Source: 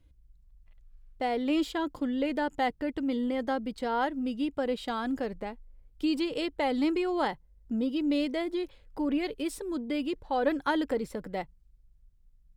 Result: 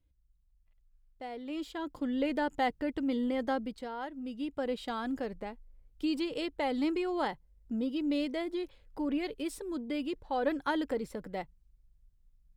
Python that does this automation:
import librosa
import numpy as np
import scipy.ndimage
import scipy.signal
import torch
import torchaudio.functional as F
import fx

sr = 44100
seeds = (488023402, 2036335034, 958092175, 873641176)

y = fx.gain(x, sr, db=fx.line((1.47, -12.0), (2.15, -1.5), (3.61, -1.5), (3.96, -11.5), (4.64, -3.5)))